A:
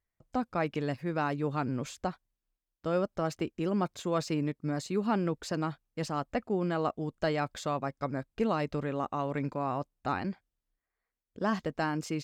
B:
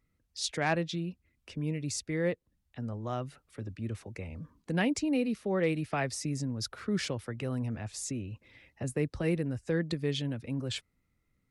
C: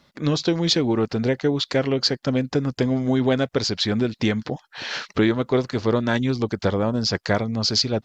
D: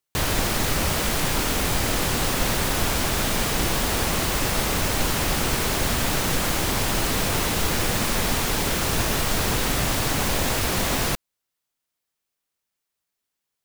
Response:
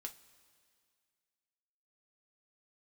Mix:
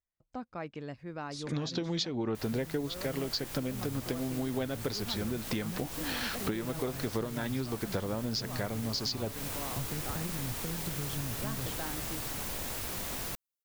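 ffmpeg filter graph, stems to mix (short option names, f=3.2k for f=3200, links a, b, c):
-filter_complex "[0:a]lowpass=7.2k,volume=-9dB,asplit=2[a][b];[1:a]acompressor=threshold=-33dB:ratio=6,bass=f=250:g=13,treble=f=4k:g=7,acrossover=split=4500[c][d];[d]acompressor=threshold=-41dB:ratio=4:attack=1:release=60[e];[c][e]amix=inputs=2:normalize=0,adelay=950,volume=-8dB[f];[2:a]adelay=1300,volume=2.5dB[g];[3:a]highshelf=f=9k:g=9.5,adelay=2200,volume=-16dB[h];[b]apad=whole_len=412206[i];[g][i]sidechaincompress=threshold=-42dB:ratio=8:attack=35:release=471[j];[a][f][j][h]amix=inputs=4:normalize=0,acompressor=threshold=-31dB:ratio=6"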